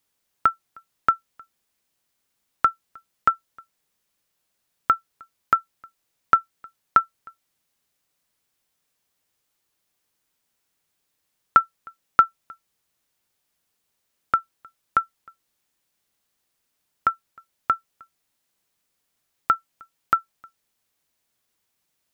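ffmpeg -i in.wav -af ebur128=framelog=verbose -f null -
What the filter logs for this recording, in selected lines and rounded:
Integrated loudness:
  I:         -24.2 LUFS
  Threshold: -36.3 LUFS
Loudness range:
  LRA:         6.3 LU
  Threshold: -48.8 LUFS
  LRA low:   -32.2 LUFS
  LRA high:  -25.9 LUFS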